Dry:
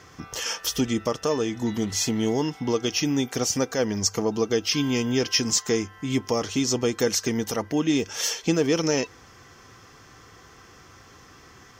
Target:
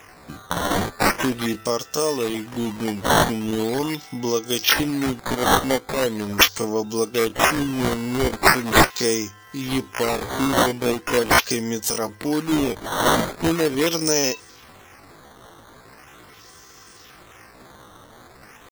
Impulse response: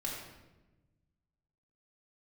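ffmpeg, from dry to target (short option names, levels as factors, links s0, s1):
-af "bass=f=250:g=-4,treble=f=4000:g=10,acrusher=samples=10:mix=1:aa=0.000001:lfo=1:lforange=16:lforate=0.64,atempo=0.63,volume=1.19"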